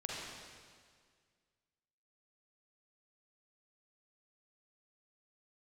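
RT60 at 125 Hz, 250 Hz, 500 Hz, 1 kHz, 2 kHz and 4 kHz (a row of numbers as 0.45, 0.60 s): 2.1, 2.0, 1.9, 1.8, 1.8, 1.7 s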